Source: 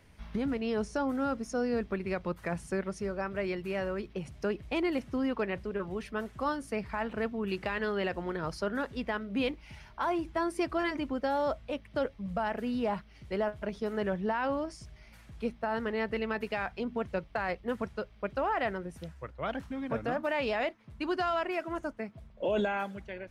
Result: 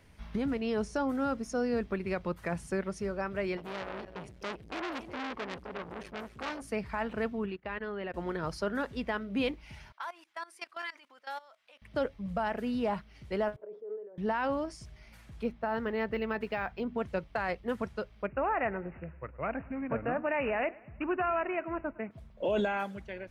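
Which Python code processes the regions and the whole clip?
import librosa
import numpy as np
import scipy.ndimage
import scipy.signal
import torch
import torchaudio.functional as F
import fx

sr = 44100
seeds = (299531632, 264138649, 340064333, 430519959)

y = fx.chain(x, sr, fx.echo_feedback(ms=257, feedback_pct=18, wet_db=-14.5),
    fx.transformer_sat(knee_hz=2400.0), at=(3.57, 6.62))
y = fx.chain(y, sr, fx.lowpass(hz=2800.0, slope=12),
    fx.level_steps(step_db=12),
    fx.upward_expand(threshold_db=-47.0, expansion=2.5), at=(7.46, 8.14))
y = fx.chain(y, sr, fx.highpass(hz=1200.0, slope=12),
    fx.level_steps(step_db=19), at=(9.92, 11.82))
y = fx.chain(y, sr, fx.over_compress(threshold_db=-40.0, ratio=-1.0),
    fx.ladder_bandpass(hz=520.0, resonance_pct=55),
    fx.peak_eq(hz=430.0, db=9.5, octaves=0.2), at=(13.56, 14.18))
y = fx.chain(y, sr, fx.high_shelf(hz=4600.0, db=-8.0),
    fx.resample_linear(factor=2), at=(15.43, 16.98))
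y = fx.chain(y, sr, fx.echo_feedback(ms=108, feedback_pct=51, wet_db=-22.0),
    fx.resample_bad(factor=8, down='none', up='filtered'), at=(18.26, 22.11))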